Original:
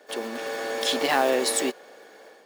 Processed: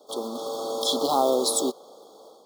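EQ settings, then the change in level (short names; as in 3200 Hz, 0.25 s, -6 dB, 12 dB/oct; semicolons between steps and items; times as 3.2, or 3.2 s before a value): Chebyshev band-stop 1300–3300 Hz, order 5; +1.5 dB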